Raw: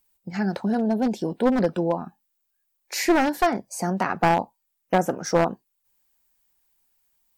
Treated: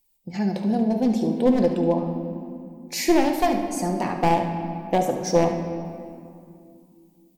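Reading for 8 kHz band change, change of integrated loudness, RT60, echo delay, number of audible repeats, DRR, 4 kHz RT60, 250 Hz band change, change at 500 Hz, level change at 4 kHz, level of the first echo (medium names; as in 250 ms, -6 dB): +1.0 dB, +1.0 dB, 2.5 s, 72 ms, 1, 3.0 dB, 1.5 s, +2.5 dB, +1.5 dB, +1.0 dB, -12.0 dB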